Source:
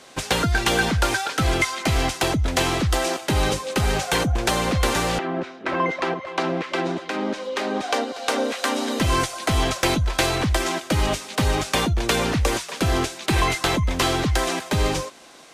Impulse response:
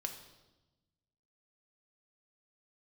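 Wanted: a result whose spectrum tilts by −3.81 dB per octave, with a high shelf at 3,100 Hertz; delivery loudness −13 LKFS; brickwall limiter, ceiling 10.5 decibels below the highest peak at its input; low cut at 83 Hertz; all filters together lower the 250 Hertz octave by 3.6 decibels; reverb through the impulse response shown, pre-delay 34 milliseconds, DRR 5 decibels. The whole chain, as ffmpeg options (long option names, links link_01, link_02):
-filter_complex "[0:a]highpass=83,equalizer=frequency=250:width_type=o:gain=-5,highshelf=frequency=3100:gain=7.5,alimiter=limit=-13dB:level=0:latency=1,asplit=2[link_01][link_02];[1:a]atrim=start_sample=2205,adelay=34[link_03];[link_02][link_03]afir=irnorm=-1:irlink=0,volume=-4dB[link_04];[link_01][link_04]amix=inputs=2:normalize=0,volume=9dB"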